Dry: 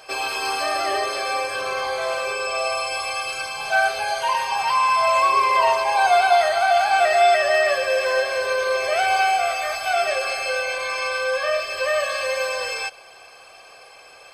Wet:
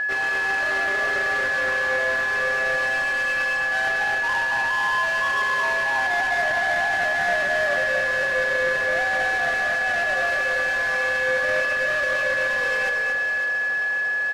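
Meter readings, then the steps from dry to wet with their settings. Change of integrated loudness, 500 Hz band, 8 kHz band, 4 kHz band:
-0.5 dB, -5.0 dB, -7.0 dB, -6.0 dB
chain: square wave that keeps the level; peaking EQ 12 kHz +9.5 dB 0.22 oct; reverse; compression 4:1, threshold -30 dBFS, peak gain reduction 17 dB; reverse; echo whose repeats swap between lows and highs 275 ms, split 1 kHz, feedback 71%, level -5.5 dB; whistle 1.7 kHz -21 dBFS; distance through air 84 m; on a send: delay 229 ms -5 dB; on the sum: loudspeaker Doppler distortion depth 0.11 ms

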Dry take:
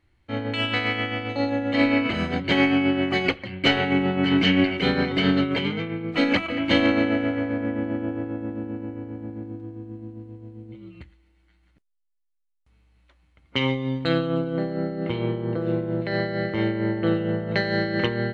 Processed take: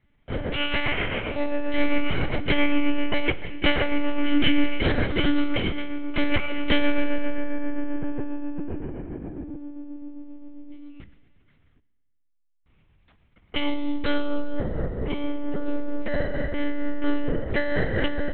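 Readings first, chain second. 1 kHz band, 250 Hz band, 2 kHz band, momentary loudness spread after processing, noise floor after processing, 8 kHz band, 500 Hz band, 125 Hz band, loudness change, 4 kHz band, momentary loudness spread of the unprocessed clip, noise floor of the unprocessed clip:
-3.5 dB, -3.5 dB, -2.5 dB, 13 LU, -66 dBFS, no reading, -3.0 dB, -4.5 dB, -3.5 dB, -3.0 dB, 15 LU, -67 dBFS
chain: monotone LPC vocoder at 8 kHz 290 Hz; Schroeder reverb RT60 1.5 s, combs from 33 ms, DRR 16.5 dB

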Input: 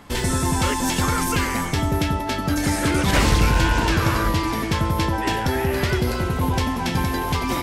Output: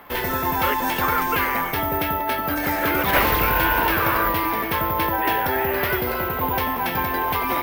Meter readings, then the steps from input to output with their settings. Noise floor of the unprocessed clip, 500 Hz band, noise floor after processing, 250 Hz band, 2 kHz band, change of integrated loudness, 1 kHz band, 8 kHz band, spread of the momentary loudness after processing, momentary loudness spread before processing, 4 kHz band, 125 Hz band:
-26 dBFS, +1.0 dB, -26 dBFS, -5.0 dB, +3.0 dB, +0.5 dB, +3.5 dB, -10.5 dB, 5 LU, 5 LU, -3.5 dB, -9.5 dB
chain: careless resampling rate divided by 3×, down filtered, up zero stuff; three-band isolator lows -14 dB, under 400 Hz, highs -17 dB, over 3 kHz; trim +4 dB

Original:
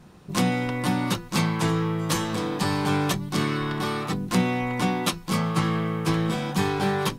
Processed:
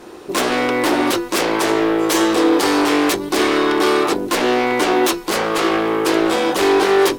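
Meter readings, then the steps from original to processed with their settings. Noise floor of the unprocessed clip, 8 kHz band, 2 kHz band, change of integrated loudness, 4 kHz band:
-44 dBFS, +9.0 dB, +10.0 dB, +9.0 dB, +9.0 dB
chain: de-hum 49.86 Hz, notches 3; in parallel at -11 dB: sine folder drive 19 dB, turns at -5.5 dBFS; on the sum: resonant low shelf 240 Hz -12.5 dB, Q 3

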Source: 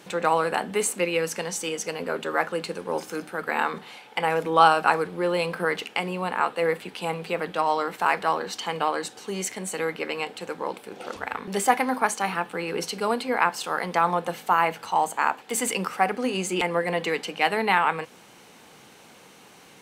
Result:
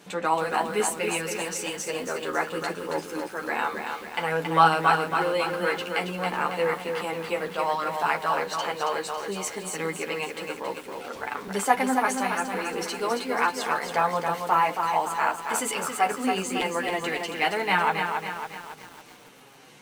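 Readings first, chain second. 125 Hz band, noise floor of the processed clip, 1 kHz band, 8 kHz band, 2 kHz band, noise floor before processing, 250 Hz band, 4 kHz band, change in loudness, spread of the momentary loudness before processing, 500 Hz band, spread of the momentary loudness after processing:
-1.0 dB, -47 dBFS, -0.5 dB, -1.0 dB, -0.5 dB, -51 dBFS, -1.0 dB, -0.5 dB, -1.0 dB, 9 LU, -1.5 dB, 9 LU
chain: chorus voices 4, 0.19 Hz, delay 11 ms, depth 4.2 ms; bit-crushed delay 275 ms, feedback 55%, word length 8-bit, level -5 dB; trim +1 dB

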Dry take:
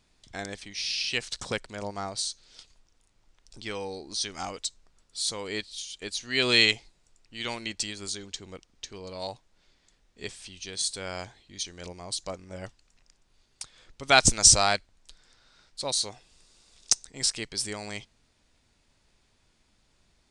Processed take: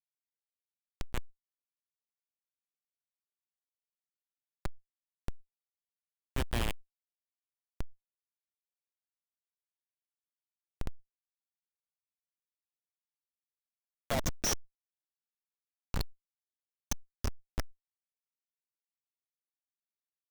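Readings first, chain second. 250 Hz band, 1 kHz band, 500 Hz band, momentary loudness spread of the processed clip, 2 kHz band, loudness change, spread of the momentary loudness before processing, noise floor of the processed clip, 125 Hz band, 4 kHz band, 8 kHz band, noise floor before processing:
-9.0 dB, -15.0 dB, -13.0 dB, 17 LU, -18.0 dB, -11.5 dB, 23 LU, under -85 dBFS, -3.5 dB, -19.5 dB, -17.5 dB, -68 dBFS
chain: drifting ripple filter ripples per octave 1.2, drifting -0.36 Hz, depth 21 dB; Schmitt trigger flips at -11.5 dBFS; level flattener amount 70%; trim -3.5 dB

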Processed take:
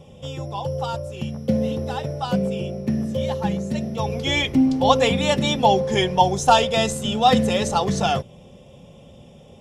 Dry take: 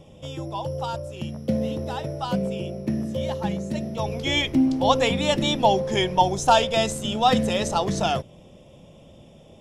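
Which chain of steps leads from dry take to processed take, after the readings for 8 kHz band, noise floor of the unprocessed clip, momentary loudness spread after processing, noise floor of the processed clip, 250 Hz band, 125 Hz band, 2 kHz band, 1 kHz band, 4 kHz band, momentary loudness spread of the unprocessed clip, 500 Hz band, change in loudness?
+2.0 dB, -49 dBFS, 11 LU, -47 dBFS, +2.5 dB, +3.5 dB, +2.5 dB, +2.5 dB, +1.5 dB, 11 LU, +2.5 dB, +2.5 dB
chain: comb of notches 320 Hz; trim +3.5 dB

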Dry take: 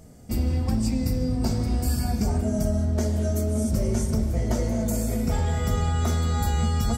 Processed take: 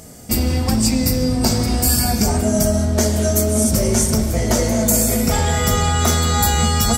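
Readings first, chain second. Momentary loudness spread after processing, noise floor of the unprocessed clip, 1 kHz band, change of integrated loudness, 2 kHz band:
3 LU, -28 dBFS, +11.5 dB, +8.5 dB, +13.5 dB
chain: in parallel at -3.5 dB: one-sided clip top -19.5 dBFS; on the sum: tilt EQ +2 dB/octave; trim +7.5 dB

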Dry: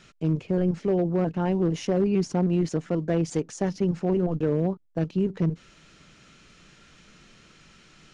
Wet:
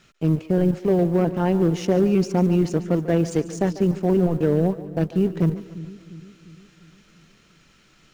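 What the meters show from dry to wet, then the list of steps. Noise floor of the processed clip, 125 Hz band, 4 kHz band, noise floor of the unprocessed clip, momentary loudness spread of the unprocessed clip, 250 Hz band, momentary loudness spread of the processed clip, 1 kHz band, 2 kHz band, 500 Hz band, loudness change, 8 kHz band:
-57 dBFS, +4.5 dB, +3.0 dB, -55 dBFS, 5 LU, +4.5 dB, 5 LU, +5.0 dB, +4.5 dB, +4.5 dB, +4.5 dB, +2.0 dB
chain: companding laws mixed up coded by A; on a send: two-band feedback delay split 350 Hz, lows 351 ms, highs 144 ms, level -14.5 dB; on the sum: trim +5 dB

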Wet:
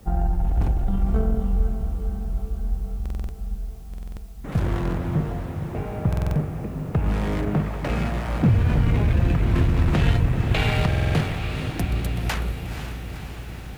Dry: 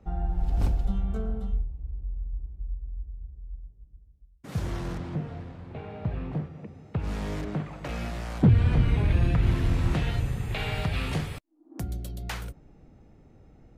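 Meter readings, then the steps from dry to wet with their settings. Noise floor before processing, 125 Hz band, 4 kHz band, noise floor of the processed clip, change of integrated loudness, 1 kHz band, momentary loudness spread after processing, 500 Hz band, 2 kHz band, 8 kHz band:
-56 dBFS, +5.0 dB, +6.0 dB, -36 dBFS, +5.0 dB, +7.5 dB, 13 LU, +7.5 dB, +7.0 dB, no reading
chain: local Wiener filter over 9 samples; Chebyshev shaper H 8 -27 dB, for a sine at -12 dBFS; in parallel at +1 dB: compressor with a negative ratio -26 dBFS, ratio -0.5; on the sum: word length cut 10-bit, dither triangular; echo that smears into a reverb 496 ms, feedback 68%, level -8.5 dB; buffer glitch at 3.01/3.89/6.08/10.87 s, samples 2048, times 5

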